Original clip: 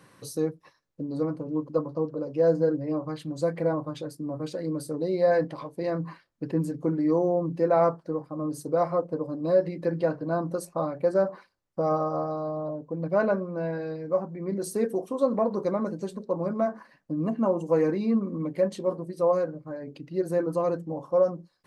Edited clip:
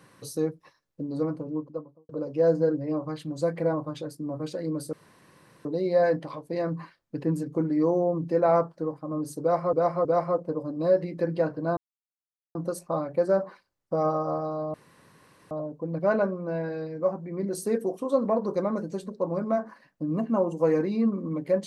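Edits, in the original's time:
0:01.31–0:02.09: fade out and dull
0:04.93: splice in room tone 0.72 s
0:08.69–0:09.01: repeat, 3 plays
0:10.41: splice in silence 0.78 s
0:12.60: splice in room tone 0.77 s

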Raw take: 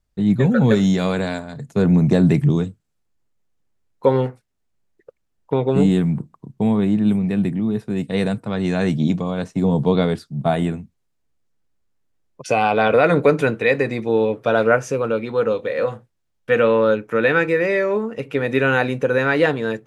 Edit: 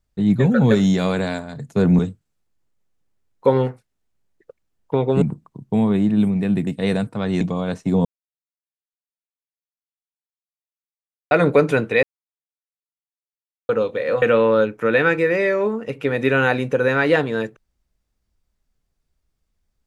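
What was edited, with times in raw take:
0:01.99–0:02.58: remove
0:05.81–0:06.10: remove
0:07.55–0:07.98: remove
0:08.72–0:09.11: remove
0:09.75–0:13.01: silence
0:13.73–0:15.39: silence
0:15.92–0:16.52: remove

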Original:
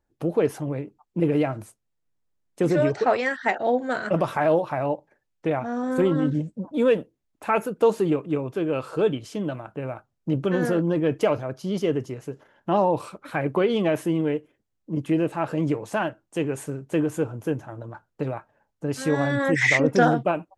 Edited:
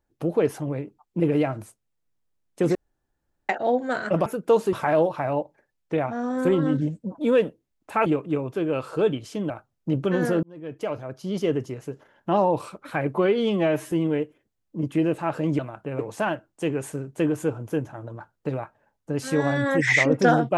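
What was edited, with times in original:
0:02.75–0:03.49: fill with room tone
0:07.59–0:08.06: move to 0:04.26
0:09.50–0:09.90: move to 0:15.73
0:10.83–0:11.88: fade in
0:13.54–0:14.06: time-stretch 1.5×

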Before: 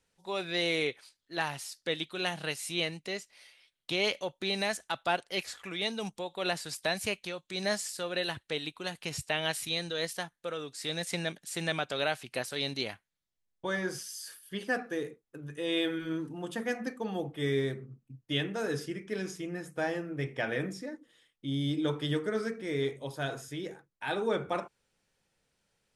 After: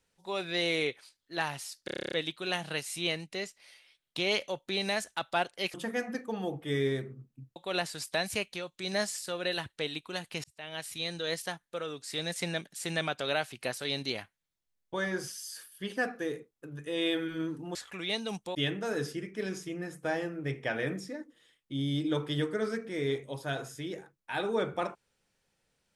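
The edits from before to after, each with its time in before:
0:01.85: stutter 0.03 s, 10 plays
0:05.47–0:06.27: swap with 0:16.46–0:18.28
0:09.15–0:09.95: fade in

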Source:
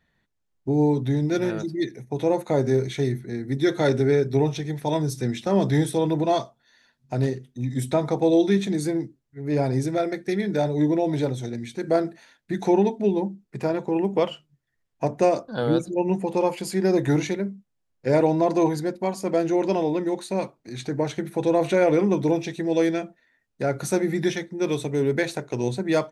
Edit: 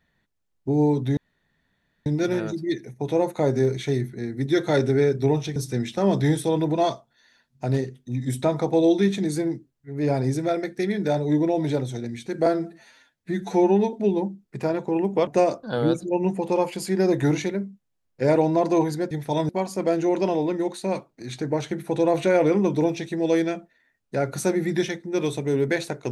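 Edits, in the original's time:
0:01.17: splice in room tone 0.89 s
0:04.67–0:05.05: move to 0:18.96
0:11.95–0:12.93: time-stretch 1.5×
0:14.27–0:15.12: remove

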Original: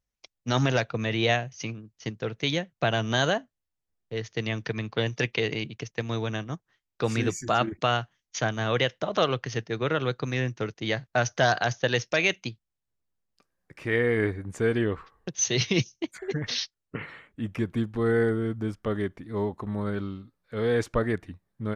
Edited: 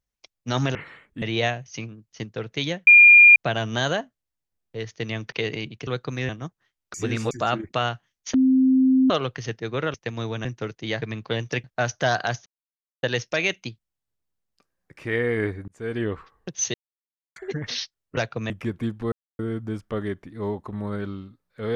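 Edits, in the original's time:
0:00.75–0:01.08: swap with 0:16.97–0:17.44
0:02.73: insert tone 2,410 Hz −7 dBFS 0.49 s
0:04.69–0:05.31: move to 0:11.01
0:05.86–0:06.37: swap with 0:10.02–0:10.44
0:07.02–0:07.39: reverse
0:08.42–0:09.18: beep over 261 Hz −14 dBFS
0:11.83: splice in silence 0.57 s
0:14.48–0:14.86: fade in linear
0:15.54–0:16.16: silence
0:18.06–0:18.33: silence

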